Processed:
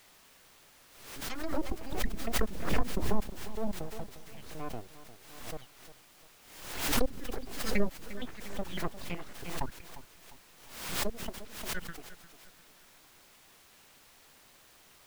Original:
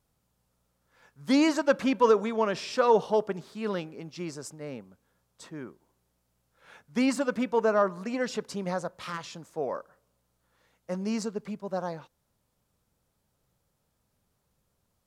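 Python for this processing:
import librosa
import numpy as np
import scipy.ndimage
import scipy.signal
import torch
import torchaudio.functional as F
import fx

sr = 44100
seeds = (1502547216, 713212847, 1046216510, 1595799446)

p1 = fx.spec_dropout(x, sr, seeds[0], share_pct=70)
p2 = np.abs(p1)
p3 = fx.env_lowpass_down(p2, sr, base_hz=450.0, full_db=-29.0)
p4 = fx.quant_dither(p3, sr, seeds[1], bits=8, dither='triangular')
p5 = p3 + (p4 * librosa.db_to_amplitude(-6.0))
p6 = fx.high_shelf(p5, sr, hz=4900.0, db=-9.0)
p7 = p6 + fx.echo_feedback(p6, sr, ms=352, feedback_pct=40, wet_db=-14.5, dry=0)
y = fx.pre_swell(p7, sr, db_per_s=64.0)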